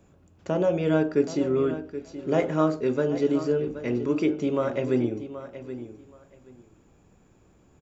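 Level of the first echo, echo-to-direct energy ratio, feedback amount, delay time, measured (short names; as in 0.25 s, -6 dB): -12.5 dB, -12.5 dB, 19%, 0.776 s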